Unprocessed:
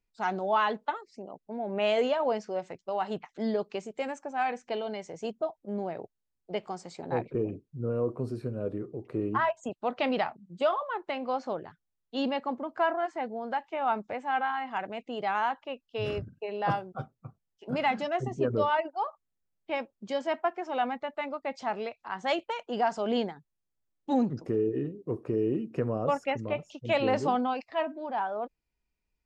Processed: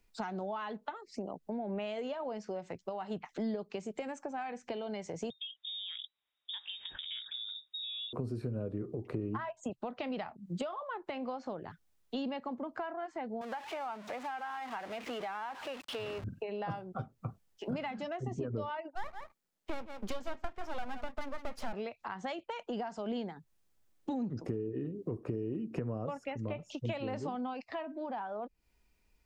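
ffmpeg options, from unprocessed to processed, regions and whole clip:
ffmpeg -i in.wav -filter_complex "[0:a]asettb=1/sr,asplit=3[link_01][link_02][link_03];[link_01]atrim=end=5.304[link_04];[link_02]atrim=start=5.3:end=8.13,asetpts=PTS-STARTPTS,afade=type=in:duration=0.004:curve=qsin,afade=type=out:start_time=2.826:duration=0.004:curve=qsin,highpass=frequency=120:width=0.5412,highpass=frequency=120:width=1.3066,acompressor=threshold=-44dB:ratio=4:attack=3.2:release=140:knee=1:detection=peak,lowpass=frequency=3300:width_type=q:width=0.5098,lowpass=frequency=3300:width_type=q:width=0.6013,lowpass=frequency=3300:width_type=q:width=0.9,lowpass=frequency=3300:width_type=q:width=2.563,afreqshift=-3900[link_05];[link_03]atrim=start=8.126[link_06];[link_04][link_05]acrossfade=duration=0.004:curve1=hsin:curve2=qsin[link_07];[link_07][link_06]acrossfade=duration=0.004:curve1=qsin:curve2=hsin,asettb=1/sr,asplit=3[link_08][link_09][link_10];[link_08]atrim=end=13.414[link_11];[link_09]atrim=start=13.41:end=16.24,asetpts=PTS-STARTPTS,afade=type=in:duration=0.004:curve=qsin,afade=type=out:start_time=2.826:duration=0.004:curve=qsin,aeval=exprs='val(0)+0.5*0.0188*sgn(val(0))':channel_layout=same,highpass=frequency=950:poles=1,aemphasis=mode=reproduction:type=75kf[link_12];[link_10]atrim=start=16.236[link_13];[link_11][link_12]acrossfade=duration=0.004:curve1=hsin:curve2=qsin[link_14];[link_14][link_13]acrossfade=duration=0.004:curve1=qsin:curve2=hsin,asettb=1/sr,asplit=3[link_15][link_16][link_17];[link_15]atrim=end=18.954[link_18];[link_16]atrim=start=18.95:end=21.73,asetpts=PTS-STARTPTS,afade=type=in:duration=0.004:curve=qsin,afade=type=out:start_time=2.776:duration=0.004:curve=qsin,highpass=frequency=150:width=0.5412,highpass=frequency=150:width=1.3066,aeval=exprs='max(val(0),0)':channel_layout=same,aecho=1:1:167:0.168,atrim=end_sample=122598[link_19];[link_17]atrim=start=21.726[link_20];[link_18][link_19]acrossfade=duration=0.004:curve1=hsin:curve2=qsin[link_21];[link_21][link_20]acrossfade=duration=0.004:curve1=qsin:curve2=hsin,acompressor=threshold=-41dB:ratio=4,equalizer=frequency=140:width_type=o:width=0.28:gain=-6,acrossover=split=210[link_22][link_23];[link_23]acompressor=threshold=-55dB:ratio=2[link_24];[link_22][link_24]amix=inputs=2:normalize=0,volume=11dB" out.wav

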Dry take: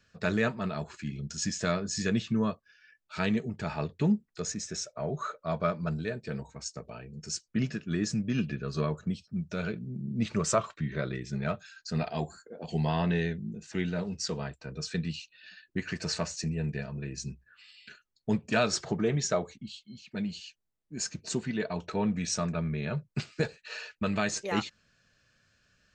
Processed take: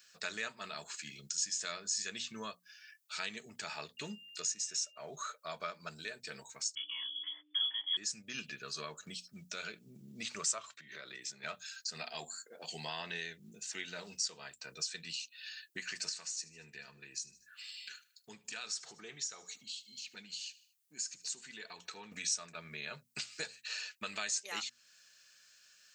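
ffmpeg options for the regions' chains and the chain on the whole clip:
ffmpeg -i in.wav -filter_complex "[0:a]asettb=1/sr,asplit=3[link_01][link_02][link_03];[link_01]atrim=end=3.974[link_04];[link_02]atrim=start=3.97:end=4.98,asetpts=PTS-STARTPTS,afade=type=in:duration=0.004:curve=qsin,afade=type=out:start_time=1.006:duration=0.004:curve=qsin,aeval=exprs='val(0)+0.00141*sin(2*PI*2800*n/s)':channel_layout=same,bandreject=frequency=790:width=5.8[link_05];[link_03]atrim=start=4.976[link_06];[link_04][link_05]acrossfade=duration=0.004:curve1=hsin:curve2=qsin[link_07];[link_07][link_06]acrossfade=duration=0.004:curve1=qsin:curve2=hsin,asettb=1/sr,asplit=3[link_08][link_09][link_10];[link_08]atrim=end=6.754[link_11];[link_09]atrim=start=6.75:end=7.97,asetpts=PTS-STARTPTS,afade=type=in:duration=0.004:curve=qsin,afade=type=out:start_time=1.216:duration=0.004:curve=qsin,lowpass=frequency=3000:width_type=q:width=0.5098,lowpass=frequency=3000:width_type=q:width=0.6013,lowpass=frequency=3000:width_type=q:width=0.9,lowpass=frequency=3000:width_type=q:width=2.563,afreqshift=-3500,aeval=exprs='val(0)+0.00631*(sin(2*PI*60*n/s)+sin(2*PI*2*60*n/s)/2+sin(2*PI*3*60*n/s)/3+sin(2*PI*4*60*n/s)/4+sin(2*PI*5*60*n/s)/5)':channel_layout=same,asplit=2[link_12][link_13];[link_13]adelay=27,volume=-3dB[link_14];[link_12][link_14]amix=inputs=2:normalize=0,atrim=end_sample=53802[link_15];[link_10]atrim=start=7.966[link_16];[link_11][link_15]acrossfade=duration=0.004:curve1=hsin:curve2=qsin[link_17];[link_17][link_16]acrossfade=duration=0.004:curve1=qsin:curve2=hsin,asettb=1/sr,asplit=3[link_18][link_19][link_20];[link_18]atrim=end=10.744[link_21];[link_19]atrim=start=10.74:end=11.44,asetpts=PTS-STARTPTS,afade=type=in:duration=0.004:curve=qsin,afade=type=out:start_time=0.696:duration=0.004:curve=qsin,highpass=140,acompressor=threshold=-40dB:ratio=4:attack=3.2:release=140:knee=1:detection=peak[link_22];[link_20]atrim=start=11.436[link_23];[link_21][link_22]acrossfade=duration=0.004:curve1=hsin:curve2=qsin[link_24];[link_24][link_23]acrossfade=duration=0.004:curve1=qsin:curve2=hsin,asettb=1/sr,asplit=3[link_25][link_26][link_27];[link_25]atrim=end=16.094[link_28];[link_26]atrim=start=16.09:end=22.12,asetpts=PTS-STARTPTS,afade=type=in:duration=0.004:curve=qsin,afade=type=out:start_time=6.026:duration=0.004:curve=qsin,bandreject=frequency=620:width=5.5,acompressor=threshold=-46dB:ratio=2:attack=3.2:release=140:knee=1:detection=peak,aecho=1:1:76|152|228:0.0944|0.0444|0.0209,atrim=end_sample=265923[link_29];[link_27]atrim=start=22.116[link_30];[link_28][link_29]acrossfade=duration=0.004:curve1=hsin:curve2=qsin[link_31];[link_31][link_30]acrossfade=duration=0.004:curve1=qsin:curve2=hsin,aderivative,bandreject=frequency=60:width_type=h:width=6,bandreject=frequency=120:width_type=h:width=6,bandreject=frequency=180:width_type=h:width=6,bandreject=frequency=240:width_type=h:width=6,acompressor=threshold=-56dB:ratio=2,volume=13.5dB" out.wav

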